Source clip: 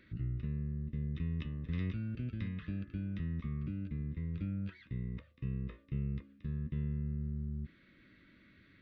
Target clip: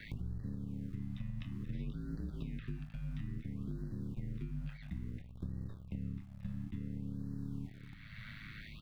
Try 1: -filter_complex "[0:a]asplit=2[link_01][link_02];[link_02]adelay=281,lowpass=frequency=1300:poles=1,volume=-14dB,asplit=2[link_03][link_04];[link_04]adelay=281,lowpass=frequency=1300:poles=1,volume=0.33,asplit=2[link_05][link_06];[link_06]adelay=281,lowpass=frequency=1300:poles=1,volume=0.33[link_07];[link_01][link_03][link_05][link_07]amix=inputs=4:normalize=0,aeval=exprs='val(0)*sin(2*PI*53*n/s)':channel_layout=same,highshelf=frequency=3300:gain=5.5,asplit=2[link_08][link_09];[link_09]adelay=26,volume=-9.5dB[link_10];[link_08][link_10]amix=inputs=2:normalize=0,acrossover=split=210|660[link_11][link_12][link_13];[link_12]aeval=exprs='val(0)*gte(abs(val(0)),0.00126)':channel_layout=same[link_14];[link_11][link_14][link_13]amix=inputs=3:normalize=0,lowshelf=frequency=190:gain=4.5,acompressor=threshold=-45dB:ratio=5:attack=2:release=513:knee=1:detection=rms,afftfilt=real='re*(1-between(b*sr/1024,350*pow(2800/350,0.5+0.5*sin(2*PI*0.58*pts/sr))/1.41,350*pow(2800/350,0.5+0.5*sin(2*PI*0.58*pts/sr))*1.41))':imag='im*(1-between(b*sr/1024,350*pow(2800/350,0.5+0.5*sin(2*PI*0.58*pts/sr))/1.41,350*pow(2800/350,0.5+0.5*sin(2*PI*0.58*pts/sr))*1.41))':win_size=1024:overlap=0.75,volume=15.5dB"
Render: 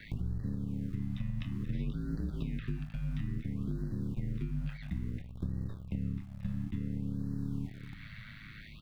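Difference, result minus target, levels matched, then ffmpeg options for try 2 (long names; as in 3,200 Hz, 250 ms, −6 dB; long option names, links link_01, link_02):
downward compressor: peak gain reduction −5.5 dB
-filter_complex "[0:a]asplit=2[link_01][link_02];[link_02]adelay=281,lowpass=frequency=1300:poles=1,volume=-14dB,asplit=2[link_03][link_04];[link_04]adelay=281,lowpass=frequency=1300:poles=1,volume=0.33,asplit=2[link_05][link_06];[link_06]adelay=281,lowpass=frequency=1300:poles=1,volume=0.33[link_07];[link_01][link_03][link_05][link_07]amix=inputs=4:normalize=0,aeval=exprs='val(0)*sin(2*PI*53*n/s)':channel_layout=same,highshelf=frequency=3300:gain=5.5,asplit=2[link_08][link_09];[link_09]adelay=26,volume=-9.5dB[link_10];[link_08][link_10]amix=inputs=2:normalize=0,acrossover=split=210|660[link_11][link_12][link_13];[link_12]aeval=exprs='val(0)*gte(abs(val(0)),0.00126)':channel_layout=same[link_14];[link_11][link_14][link_13]amix=inputs=3:normalize=0,lowshelf=frequency=190:gain=4.5,acompressor=threshold=-52dB:ratio=5:attack=2:release=513:knee=1:detection=rms,afftfilt=real='re*(1-between(b*sr/1024,350*pow(2800/350,0.5+0.5*sin(2*PI*0.58*pts/sr))/1.41,350*pow(2800/350,0.5+0.5*sin(2*PI*0.58*pts/sr))*1.41))':imag='im*(1-between(b*sr/1024,350*pow(2800/350,0.5+0.5*sin(2*PI*0.58*pts/sr))/1.41,350*pow(2800/350,0.5+0.5*sin(2*PI*0.58*pts/sr))*1.41))':win_size=1024:overlap=0.75,volume=15.5dB"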